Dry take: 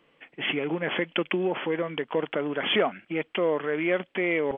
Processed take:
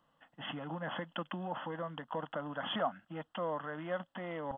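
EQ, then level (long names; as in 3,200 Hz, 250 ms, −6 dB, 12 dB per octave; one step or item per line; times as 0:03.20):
phaser with its sweep stopped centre 960 Hz, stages 4
−4.0 dB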